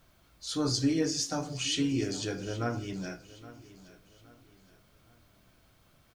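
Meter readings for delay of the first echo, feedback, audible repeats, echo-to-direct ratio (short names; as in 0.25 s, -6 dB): 0.819 s, 38%, 3, -17.5 dB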